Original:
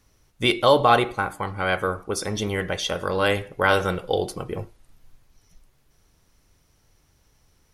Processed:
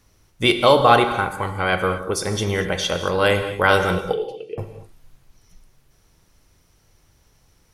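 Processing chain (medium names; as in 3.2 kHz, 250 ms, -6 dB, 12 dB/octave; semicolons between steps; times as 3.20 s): 4.12–4.58 s: two resonant band-passes 1.1 kHz, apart 2.6 oct; gated-style reverb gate 260 ms flat, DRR 8 dB; trim +3 dB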